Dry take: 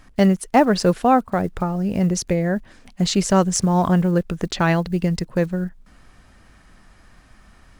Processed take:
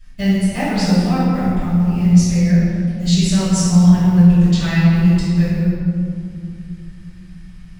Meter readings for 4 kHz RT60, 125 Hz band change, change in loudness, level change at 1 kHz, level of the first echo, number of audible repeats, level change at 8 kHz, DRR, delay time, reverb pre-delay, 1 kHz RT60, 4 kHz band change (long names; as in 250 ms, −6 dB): 1.3 s, +9.0 dB, +5.0 dB, −6.0 dB, no echo audible, no echo audible, +1.5 dB, −17.0 dB, no echo audible, 3 ms, 2.5 s, +3.5 dB